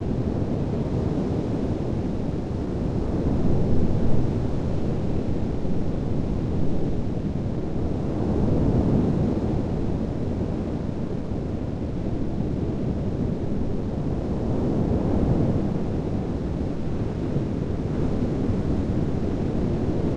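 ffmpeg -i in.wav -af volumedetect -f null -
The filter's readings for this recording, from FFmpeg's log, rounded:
mean_volume: -23.2 dB
max_volume: -7.6 dB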